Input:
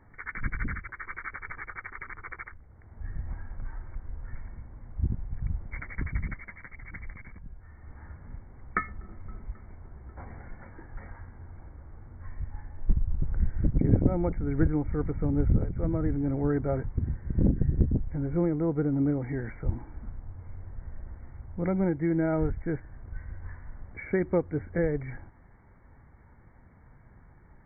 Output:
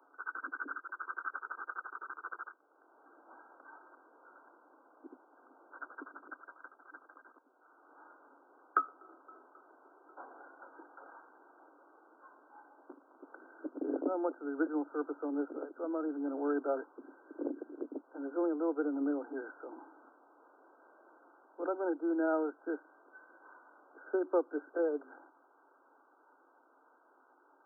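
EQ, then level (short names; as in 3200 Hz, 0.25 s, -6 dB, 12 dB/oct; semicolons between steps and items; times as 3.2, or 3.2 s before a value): steep high-pass 270 Hz 96 dB/oct; brick-wall FIR low-pass 1600 Hz; tilt +3 dB/oct; 0.0 dB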